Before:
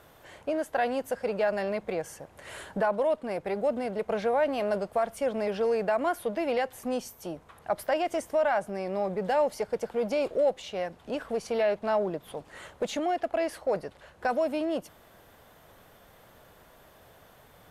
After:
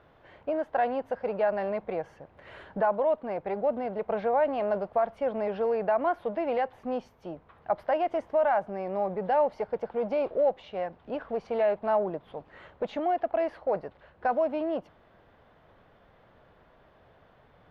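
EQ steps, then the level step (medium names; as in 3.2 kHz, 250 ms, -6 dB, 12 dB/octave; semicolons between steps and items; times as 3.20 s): dynamic bell 840 Hz, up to +6 dB, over -41 dBFS, Q 1.2; distance through air 320 m; -2.0 dB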